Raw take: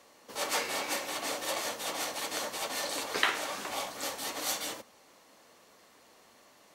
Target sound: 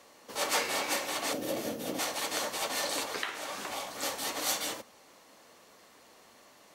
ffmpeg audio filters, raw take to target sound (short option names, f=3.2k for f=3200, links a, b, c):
-filter_complex "[0:a]asettb=1/sr,asplit=3[a][b][c];[a]atrim=end=1.334[d];[b]atrim=start=1.33:end=1.99,asetpts=PTS-STARTPTS,afade=t=in:d=0.004:c=qsin,afade=t=out:st=0.656:d=0.004:c=qsin,equalizer=f=125:t=o:w=1:g=8,equalizer=f=250:t=o:w=1:g=10,equalizer=f=500:t=o:w=1:g=3,equalizer=f=1k:t=o:w=1:g=-11,equalizer=f=2k:t=o:w=1:g=-6,equalizer=f=4k:t=o:w=1:g=-6,equalizer=f=8k:t=o:w=1:g=-8[e];[c]atrim=start=1.986[f];[d][e]acrossfade=d=0.004:c1=hsin:c2=qsin[g];[g][f]acrossfade=d=0.004:c1=qsin:c2=hsin,asettb=1/sr,asplit=3[h][i][j];[h]atrim=end=3.034[k];[i]atrim=start=3.03:end=4.02,asetpts=PTS-STARTPTS,afade=t=in:d=0.004:c=qsin,afade=t=out:st=0.986:d=0.004:c=qsin,acompressor=threshold=-37dB:ratio=3[l];[j]atrim=start=4.016[m];[k][l]acrossfade=d=0.004:c1=hsin:c2=qsin[n];[n][m]acrossfade=d=0.004:c1=qsin:c2=hsin,volume=2dB"